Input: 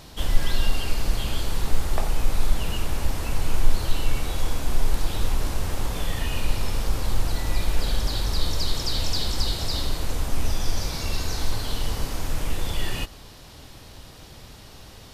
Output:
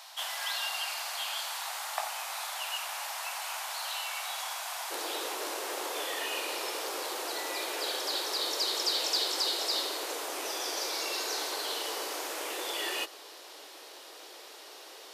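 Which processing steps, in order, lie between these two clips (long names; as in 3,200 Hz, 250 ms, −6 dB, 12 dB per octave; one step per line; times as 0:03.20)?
Butterworth high-pass 680 Hz 48 dB per octave, from 0:04.90 340 Hz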